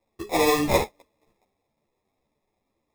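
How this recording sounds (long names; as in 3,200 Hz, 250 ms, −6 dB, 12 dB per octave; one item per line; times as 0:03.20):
aliases and images of a low sample rate 1,500 Hz, jitter 0%
a shimmering, thickened sound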